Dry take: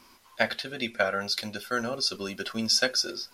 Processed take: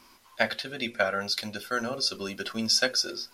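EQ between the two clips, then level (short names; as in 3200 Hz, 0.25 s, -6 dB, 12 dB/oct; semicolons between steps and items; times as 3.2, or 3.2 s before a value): notches 60/120/180/240/300/360/420/480/540 Hz; 0.0 dB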